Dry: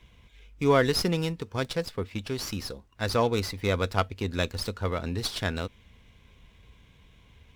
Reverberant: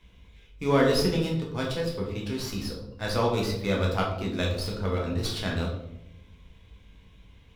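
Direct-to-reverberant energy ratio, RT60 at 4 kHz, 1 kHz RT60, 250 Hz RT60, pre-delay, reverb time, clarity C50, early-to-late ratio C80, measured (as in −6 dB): −2.0 dB, 0.50 s, 0.70 s, 1.4 s, 11 ms, 0.90 s, 5.0 dB, 8.5 dB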